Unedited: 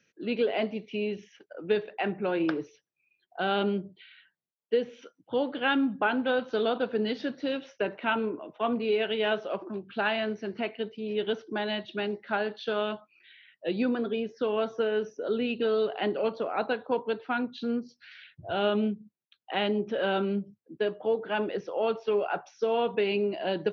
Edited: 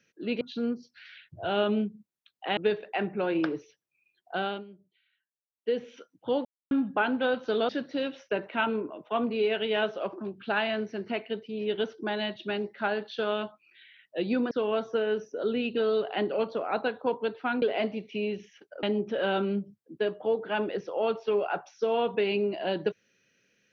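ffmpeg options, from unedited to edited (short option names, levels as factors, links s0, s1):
-filter_complex "[0:a]asplit=11[s0][s1][s2][s3][s4][s5][s6][s7][s8][s9][s10];[s0]atrim=end=0.412[s11];[s1]atrim=start=17.468:end=19.632[s12];[s2]atrim=start=1.618:end=3.69,asetpts=PTS-STARTPTS,afade=t=out:st=1.772:d=0.3:silence=0.105925[s13];[s3]atrim=start=3.69:end=4.54,asetpts=PTS-STARTPTS,volume=0.106[s14];[s4]atrim=start=4.54:end=5.5,asetpts=PTS-STARTPTS,afade=t=in:d=0.3:silence=0.105925,afade=t=out:st=0.956:d=0.004:c=hsin[s15];[s5]atrim=start=5.5:end=5.76,asetpts=PTS-STARTPTS,volume=0[s16];[s6]atrim=start=5.76:end=6.742,asetpts=PTS-STARTPTS,afade=t=in:d=0.004:c=hsin[s17];[s7]atrim=start=7.178:end=14.002[s18];[s8]atrim=start=14.358:end=17.472[s19];[s9]atrim=start=0.408:end=1.622[s20];[s10]atrim=start=19.628[s21];[s11][s12]acrossfade=d=0.004:c1=hsin:c2=hsin[s22];[s13][s14][s15][s16][s17]concat=n=5:v=0:a=1[s23];[s22][s23]acrossfade=d=0.004:c1=hsin:c2=hsin[s24];[s24][s18]acrossfade=d=0.004:c1=hsin:c2=hsin[s25];[s25][s19]acrossfade=d=0.004:c1=hsin:c2=hsin[s26];[s26][s20]acrossfade=d=0.004:c1=hsin:c2=hsin[s27];[s27][s21]acrossfade=d=0.004:c1=hsin:c2=hsin"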